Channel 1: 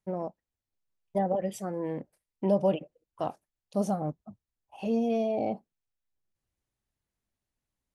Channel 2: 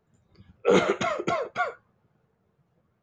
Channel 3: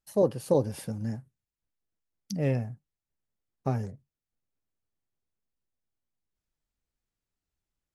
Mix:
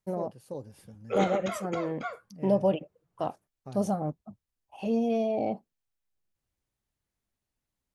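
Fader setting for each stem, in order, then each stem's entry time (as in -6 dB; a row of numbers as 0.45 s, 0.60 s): +0.5 dB, -9.0 dB, -15.0 dB; 0.00 s, 0.45 s, 0.00 s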